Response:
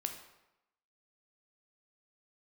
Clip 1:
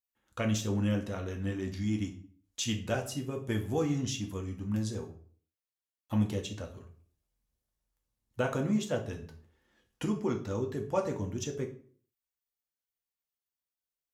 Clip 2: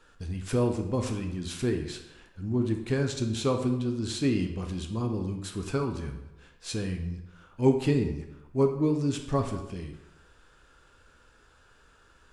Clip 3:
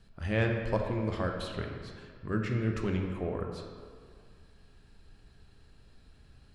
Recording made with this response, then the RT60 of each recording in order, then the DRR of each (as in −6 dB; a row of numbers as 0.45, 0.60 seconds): 2; 0.50, 0.90, 2.0 seconds; 1.5, 4.5, 1.5 decibels